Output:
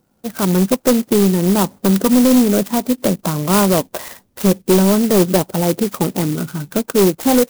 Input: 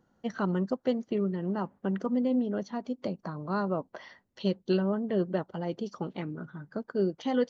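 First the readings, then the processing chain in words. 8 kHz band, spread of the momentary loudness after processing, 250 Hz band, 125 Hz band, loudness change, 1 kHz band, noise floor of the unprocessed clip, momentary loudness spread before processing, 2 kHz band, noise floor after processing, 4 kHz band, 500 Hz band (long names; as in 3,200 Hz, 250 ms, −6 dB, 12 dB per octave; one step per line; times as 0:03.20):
can't be measured, 8 LU, +15.5 dB, +16.0 dB, +16.0 dB, +15.0 dB, −71 dBFS, 11 LU, +14.5 dB, −61 dBFS, +20.0 dB, +14.5 dB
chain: automatic gain control gain up to 12 dB
in parallel at −4 dB: sine wavefolder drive 7 dB, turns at −4 dBFS
on the sum: converter with an unsteady clock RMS 0.11 ms
level −4 dB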